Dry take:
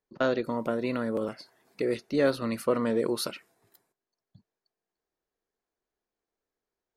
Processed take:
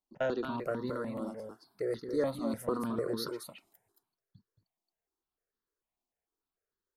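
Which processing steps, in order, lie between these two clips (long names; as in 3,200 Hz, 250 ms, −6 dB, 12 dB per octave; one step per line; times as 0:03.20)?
0:00.78–0:03.31: parametric band 2,600 Hz −13.5 dB 0.58 octaves
single-tap delay 224 ms −6.5 dB
step-sequenced phaser 6.7 Hz 460–2,400 Hz
level −3 dB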